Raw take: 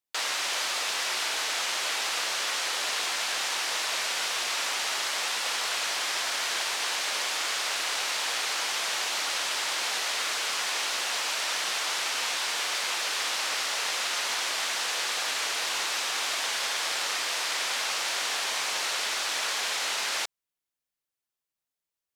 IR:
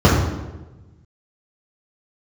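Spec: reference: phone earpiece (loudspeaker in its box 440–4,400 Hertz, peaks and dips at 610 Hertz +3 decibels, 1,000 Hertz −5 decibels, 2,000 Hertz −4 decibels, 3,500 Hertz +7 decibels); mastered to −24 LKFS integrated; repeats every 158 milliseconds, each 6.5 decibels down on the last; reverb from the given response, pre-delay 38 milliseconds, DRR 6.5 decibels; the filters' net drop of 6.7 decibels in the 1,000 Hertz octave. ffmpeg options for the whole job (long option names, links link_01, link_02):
-filter_complex "[0:a]equalizer=frequency=1000:width_type=o:gain=-6.5,aecho=1:1:158|316|474|632|790|948:0.473|0.222|0.105|0.0491|0.0231|0.0109,asplit=2[link_01][link_02];[1:a]atrim=start_sample=2205,adelay=38[link_03];[link_02][link_03]afir=irnorm=-1:irlink=0,volume=-32.5dB[link_04];[link_01][link_04]amix=inputs=2:normalize=0,highpass=440,equalizer=frequency=610:width_type=q:width=4:gain=3,equalizer=frequency=1000:width_type=q:width=4:gain=-5,equalizer=frequency=2000:width_type=q:width=4:gain=-4,equalizer=frequency=3500:width_type=q:width=4:gain=7,lowpass=frequency=4400:width=0.5412,lowpass=frequency=4400:width=1.3066,volume=2.5dB"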